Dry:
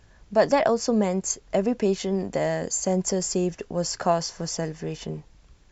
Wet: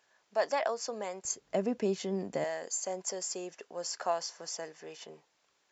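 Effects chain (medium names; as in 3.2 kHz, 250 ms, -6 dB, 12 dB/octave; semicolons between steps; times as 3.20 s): high-pass 610 Hz 12 dB/octave, from 1.25 s 150 Hz, from 2.44 s 550 Hz; trim -7.5 dB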